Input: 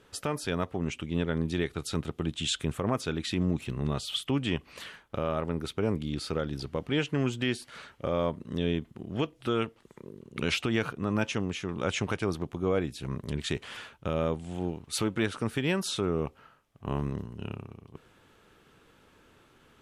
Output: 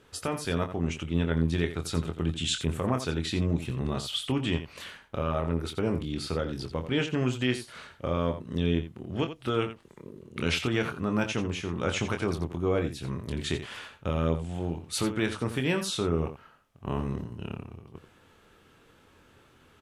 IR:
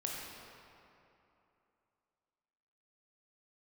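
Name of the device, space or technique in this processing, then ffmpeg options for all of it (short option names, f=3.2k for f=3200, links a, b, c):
slapback doubling: -filter_complex "[0:a]asplit=3[a][b][c];[b]adelay=24,volume=-7dB[d];[c]adelay=86,volume=-11dB[e];[a][d][e]amix=inputs=3:normalize=0,equalizer=f=85:t=o:w=0.32:g=4.5"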